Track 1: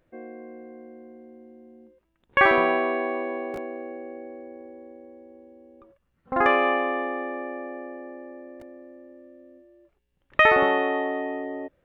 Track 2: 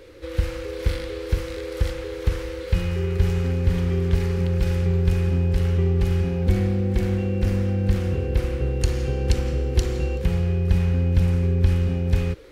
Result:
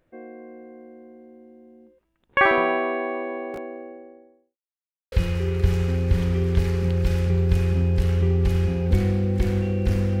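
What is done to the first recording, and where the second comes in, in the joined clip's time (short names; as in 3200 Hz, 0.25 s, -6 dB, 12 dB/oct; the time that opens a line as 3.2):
track 1
3.53–4.58 studio fade out
4.58–5.12 mute
5.12 switch to track 2 from 2.68 s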